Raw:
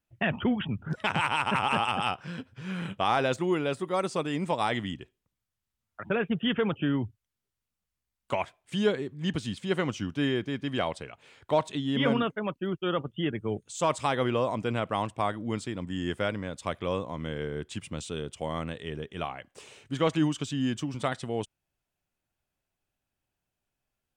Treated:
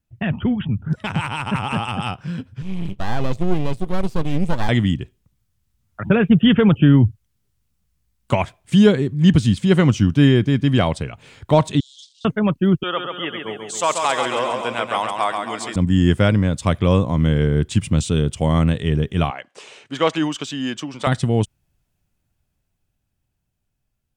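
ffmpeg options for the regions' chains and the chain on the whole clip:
ffmpeg -i in.wav -filter_complex "[0:a]asettb=1/sr,asplit=3[link_01][link_02][link_03];[link_01]atrim=end=2.624[link_04];[link_02]atrim=start=2.62:end=4.69,asetpts=PTS-STARTPTS,afade=type=in:duration=0.004:curve=qsin,afade=type=out:start_time=2.066:duration=0.004:curve=qsin,acrossover=split=3300[link_05][link_06];[link_06]acompressor=threshold=-54dB:ratio=4:attack=1:release=60[link_07];[link_05][link_07]amix=inputs=2:normalize=0,asuperstop=centerf=1500:order=4:qfactor=1.6,aeval=exprs='max(val(0),0)':channel_layout=same[link_08];[link_03]atrim=start=4.686[link_09];[link_04][link_08]acrossfade=duration=0.004:curve1=hsin:curve2=qsin[link_10];[link_10][link_09]acrossfade=duration=0.004:curve1=qsin:curve2=hsin,asettb=1/sr,asplit=3[link_11][link_12][link_13];[link_11]atrim=end=11.804[link_14];[link_12]atrim=start=11.8:end=12.25,asetpts=PTS-STARTPTS,afade=type=in:duration=0.004:curve=qsin,afade=type=out:start_time=0.446:duration=0.004:curve=qsin,aeval=exprs='if(lt(val(0),0),0.251*val(0),val(0))':channel_layout=same,acompressor=threshold=-29dB:ratio=10:attack=3.2:release=140:knee=1:detection=peak,asuperpass=centerf=5900:order=12:qfactor=1.1[link_15];[link_13]atrim=start=12.246[link_16];[link_14][link_15]acrossfade=duration=0.004:curve1=hsin:curve2=qsin[link_17];[link_17][link_16]acrossfade=duration=0.004:curve1=qsin:curve2=hsin,asettb=1/sr,asplit=3[link_18][link_19][link_20];[link_18]atrim=end=12.834[link_21];[link_19]atrim=start=12.83:end=15.76,asetpts=PTS-STARTPTS,afade=type=in:duration=0.004:curve=qsin,afade=type=out:start_time=2.926:duration=0.004:curve=qsin,highpass=680,aecho=1:1:136|272|408|544|680|816|952:0.562|0.309|0.17|0.0936|0.0515|0.0283|0.0156,atrim=end_sample=129213[link_22];[link_20]atrim=start=15.756[link_23];[link_21][link_22]acrossfade=duration=0.004:curve1=hsin:curve2=qsin[link_24];[link_24][link_23]acrossfade=duration=0.004:curve1=qsin:curve2=hsin,asettb=1/sr,asplit=3[link_25][link_26][link_27];[link_25]atrim=end=19.304[link_28];[link_26]atrim=start=19.3:end=21.07,asetpts=PTS-STARTPTS,afade=type=in:duration=0.004:curve=qsin,afade=type=out:start_time=1.766:duration=0.004:curve=qsin,highpass=510,adynamicsmooth=sensitivity=3:basefreq=6300[link_29];[link_27]atrim=start=21.066[link_30];[link_28][link_29]acrossfade=duration=0.004:curve1=hsin:curve2=qsin[link_31];[link_31][link_30]acrossfade=duration=0.004:curve1=qsin:curve2=hsin,bass=frequency=250:gain=13,treble=frequency=4000:gain=3,dynaudnorm=framelen=600:gausssize=11:maxgain=11.5dB" out.wav

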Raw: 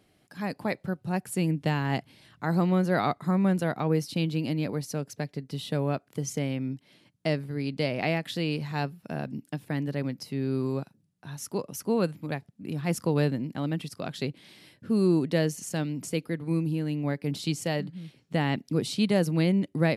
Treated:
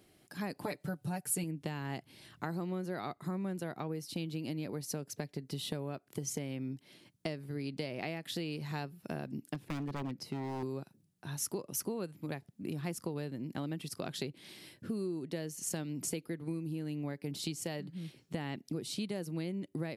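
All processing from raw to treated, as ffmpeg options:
ffmpeg -i in.wav -filter_complex "[0:a]asettb=1/sr,asplit=3[link_01][link_02][link_03];[link_01]atrim=end=0.634[link_04];[link_02]atrim=start=0.63:end=1.44,asetpts=PTS-STARTPTS,afade=type=in:duration=0.004:curve=qsin,afade=type=out:start_time=0.806:duration=0.004:curve=qsin,equalizer=frequency=10000:width_type=o:width=1.6:gain=5,aecho=1:1:6.8:0.79,atrim=end_sample=35721[link_05];[link_03]atrim=start=1.436[link_06];[link_04][link_05]acrossfade=duration=0.004:curve1=hsin:curve2=qsin[link_07];[link_07][link_06]acrossfade=duration=0.004:curve1=qsin:curve2=hsin,asettb=1/sr,asplit=3[link_08][link_09][link_10];[link_08]atrim=end=9.544[link_11];[link_09]atrim=start=9.54:end=10.63,asetpts=PTS-STARTPTS,afade=type=in:duration=0.004:curve=qsin,afade=type=out:start_time=1.086:duration=0.004:curve=qsin,lowpass=frequency=3000:poles=1,aeval=exprs='0.0501*(abs(mod(val(0)/0.0501+3,4)-2)-1)':channel_layout=same[link_12];[link_10]atrim=start=10.626[link_13];[link_11][link_12]acrossfade=duration=0.004:curve1=hsin:curve2=qsin[link_14];[link_14][link_13]acrossfade=duration=0.004:curve1=qsin:curve2=hsin,equalizer=frequency=360:width=4.1:gain=5.5,acompressor=threshold=-33dB:ratio=10,highshelf=frequency=6000:gain=7.5,volume=-1.5dB" out.wav

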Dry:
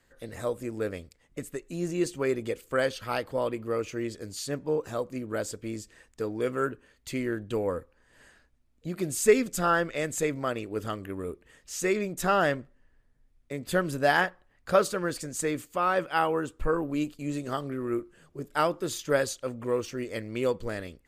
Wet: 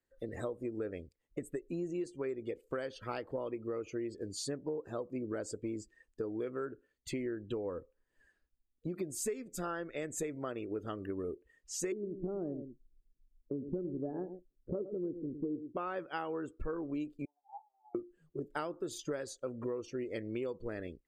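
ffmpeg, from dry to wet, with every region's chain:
ffmpeg -i in.wav -filter_complex "[0:a]asettb=1/sr,asplit=3[link_01][link_02][link_03];[link_01]atrim=end=11.924[link_04];[link_02]atrim=start=11.92:end=15.77,asetpts=PTS-STARTPTS,afade=type=in:duration=0.004:curve=qsin,afade=type=out:start_time=3.846:duration=0.004:curve=qsin,lowpass=frequency=340:width_type=q:width=1.7,aecho=1:1:110:0.237,atrim=end_sample=169785[link_05];[link_03]atrim=start=15.766[link_06];[link_04][link_05]acrossfade=duration=0.004:curve1=hsin:curve2=qsin[link_07];[link_07][link_06]acrossfade=duration=0.004:curve1=qsin:curve2=hsin,asettb=1/sr,asplit=3[link_08][link_09][link_10];[link_08]atrim=end=17.254[link_11];[link_09]atrim=start=17.25:end=17.95,asetpts=PTS-STARTPTS,afade=type=in:duration=0.004:curve=qsin,afade=type=out:start_time=0.696:duration=0.004:curve=qsin,aeval=exprs='if(lt(val(0),0),0.251*val(0),val(0))':channel_layout=same,asuperpass=centerf=830:order=4:qfactor=7.8[link_12];[link_10]atrim=start=17.946[link_13];[link_11][link_12]acrossfade=duration=0.004:curve1=hsin:curve2=qsin[link_14];[link_14][link_13]acrossfade=duration=0.004:curve1=qsin:curve2=hsin,afftdn=noise_reduction=20:noise_floor=-45,equalizer=frequency=360:width=1.7:gain=7,acompressor=threshold=-32dB:ratio=10,volume=-2.5dB" out.wav

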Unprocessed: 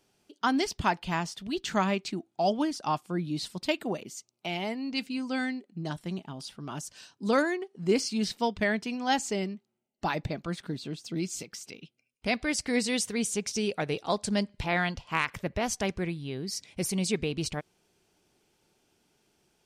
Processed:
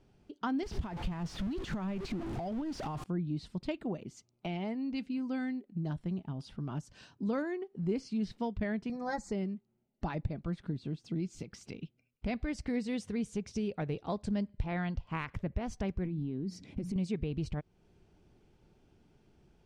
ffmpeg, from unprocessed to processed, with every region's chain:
ffmpeg -i in.wav -filter_complex "[0:a]asettb=1/sr,asplit=3[link_01][link_02][link_03];[link_01]atrim=end=0.634[link_04];[link_02]atrim=start=0.63:end=3.04,asetpts=PTS-STARTPTS,afade=type=in:duration=0.004:curve=qsin,afade=type=out:start_time=2.406:duration=0.004:curve=qsin,aeval=exprs='val(0)+0.5*0.0316*sgn(val(0))':channel_layout=same,acompressor=threshold=-30dB:ratio=10:attack=3.2:release=140:knee=1:detection=peak[link_05];[link_03]atrim=start=3.036[link_06];[link_04][link_05]acrossfade=duration=0.004:curve1=hsin:curve2=qsin[link_07];[link_07][link_06]acrossfade=duration=0.004:curve1=qsin:curve2=hsin,asettb=1/sr,asplit=3[link_08][link_09][link_10];[link_08]atrim=end=8.894[link_11];[link_09]atrim=start=8.89:end=9.32,asetpts=PTS-STARTPTS,afade=type=in:duration=0.004:curve=qsin,afade=type=out:start_time=0.426:duration=0.004:curve=qsin,aecho=1:1:5.7:0.84,atrim=end_sample=18963,acrusher=bits=8:mode=log:mix=0:aa=0.000001,asuperstop=centerf=2900:order=4:qfactor=1.4[link_12];[link_10]atrim=start=9.316[link_13];[link_11][link_12]acrossfade=duration=0.004:curve1=hsin:curve2=qsin[link_14];[link_14][link_13]acrossfade=duration=0.004:curve1=qsin:curve2=hsin,asettb=1/sr,asplit=3[link_15][link_16][link_17];[link_15]atrim=end=16.054[link_18];[link_16]atrim=start=16.05:end=16.96,asetpts=PTS-STARTPTS,afade=type=in:duration=0.004:curve=qsin,afade=type=out:start_time=0.906:duration=0.004:curve=qsin,equalizer=frequency=260:width_type=o:width=1.2:gain=13.5,bandreject=frequency=60:width_type=h:width=6,bandreject=frequency=120:width_type=h:width=6,bandreject=frequency=180:width_type=h:width=6,acompressor=threshold=-31dB:ratio=10:attack=3.2:release=140:knee=1:detection=peak[link_19];[link_17]atrim=start=16.956[link_20];[link_18][link_19]acrossfade=duration=0.004:curve1=hsin:curve2=qsin[link_21];[link_21][link_20]acrossfade=duration=0.004:curve1=qsin:curve2=hsin,aemphasis=mode=reproduction:type=riaa,acompressor=threshold=-40dB:ratio=2" out.wav

